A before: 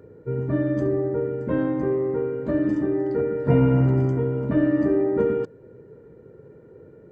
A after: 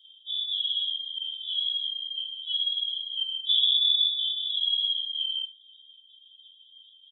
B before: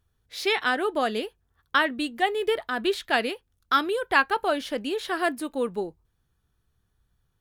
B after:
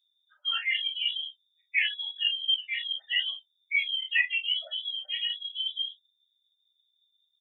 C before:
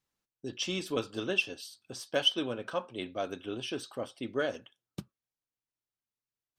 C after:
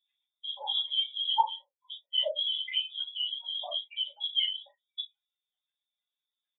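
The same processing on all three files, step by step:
expanding power law on the bin magnitudes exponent 3.4
voice inversion scrambler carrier 3,600 Hz
Chebyshev high-pass filter 600 Hz, order 6
on a send: ambience of single reflections 32 ms −5.5 dB, 56 ms −15.5 dB
on the sum: string-ensemble chorus
normalise the peak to −12 dBFS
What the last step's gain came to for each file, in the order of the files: −4.0, −1.5, +6.0 decibels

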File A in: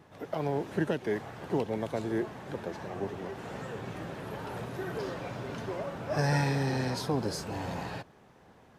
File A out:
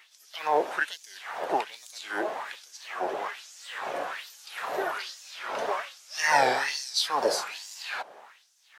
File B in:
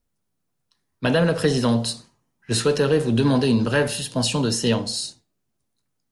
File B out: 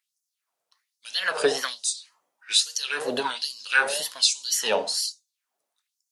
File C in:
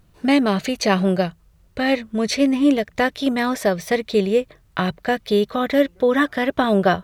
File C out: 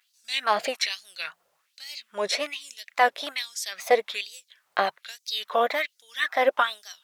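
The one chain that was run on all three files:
tape wow and flutter 140 cents
auto-filter high-pass sine 1.2 Hz 570–6,400 Hz
normalise the peak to −6 dBFS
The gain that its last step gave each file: +7.5, 0.0, −2.5 decibels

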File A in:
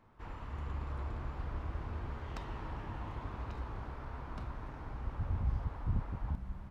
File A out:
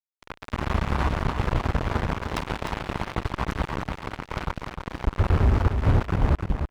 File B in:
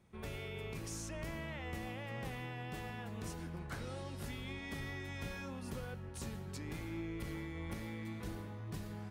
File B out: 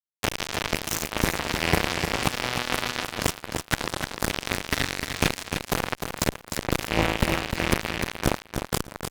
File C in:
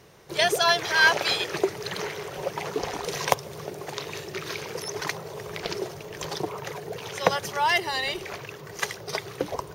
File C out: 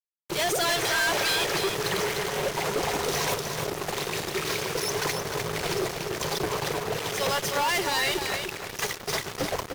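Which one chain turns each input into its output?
fuzz pedal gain 39 dB, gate −37 dBFS
repeating echo 303 ms, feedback 19%, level −6.5 dB
loudness normalisation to −27 LKFS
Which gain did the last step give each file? −1.0, +8.0, −10.5 decibels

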